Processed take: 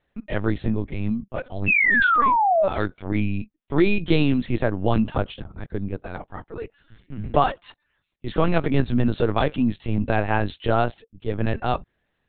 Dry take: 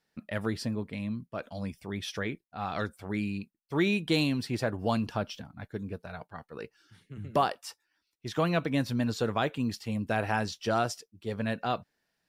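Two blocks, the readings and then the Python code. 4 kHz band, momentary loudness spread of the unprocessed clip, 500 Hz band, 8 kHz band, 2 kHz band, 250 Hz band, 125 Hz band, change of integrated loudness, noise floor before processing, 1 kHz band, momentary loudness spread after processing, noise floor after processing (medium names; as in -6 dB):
+1.5 dB, 15 LU, +8.0 dB, under -30 dB, +12.5 dB, +7.5 dB, +8.5 dB, +9.0 dB, -80 dBFS, +10.5 dB, 18 LU, -74 dBFS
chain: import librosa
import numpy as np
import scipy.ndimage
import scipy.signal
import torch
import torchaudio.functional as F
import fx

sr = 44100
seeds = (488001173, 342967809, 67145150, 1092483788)

y = fx.low_shelf(x, sr, hz=500.0, db=5.0)
y = fx.spec_paint(y, sr, seeds[0], shape='fall', start_s=1.67, length_s=1.01, low_hz=560.0, high_hz=2700.0, level_db=-24.0)
y = fx.lpc_vocoder(y, sr, seeds[1], excitation='pitch_kept', order=10)
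y = y * librosa.db_to_amplitude(5.5)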